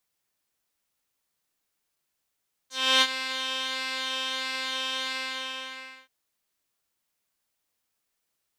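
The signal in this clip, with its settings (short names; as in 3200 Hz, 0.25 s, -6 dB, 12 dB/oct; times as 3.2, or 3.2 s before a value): synth patch with pulse-width modulation C5, sub -2 dB, filter bandpass, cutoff 2500 Hz, Q 2.1, filter envelope 1.5 oct, filter decay 0.08 s, filter sustain 25%, attack 0.315 s, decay 0.05 s, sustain -12 dB, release 0.98 s, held 2.40 s, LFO 1.5 Hz, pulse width 20%, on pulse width 4%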